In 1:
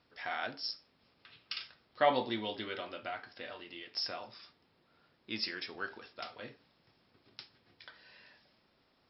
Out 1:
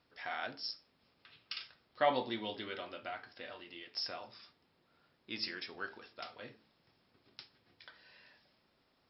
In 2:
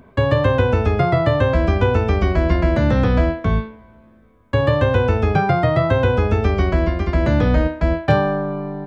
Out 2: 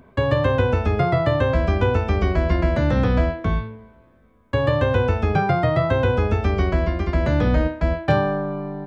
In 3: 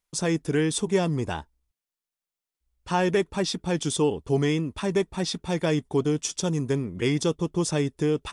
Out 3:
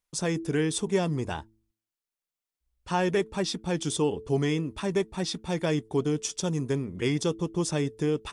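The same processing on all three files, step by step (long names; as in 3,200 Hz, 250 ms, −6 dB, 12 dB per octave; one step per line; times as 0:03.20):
hum removal 109.7 Hz, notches 4
level −2.5 dB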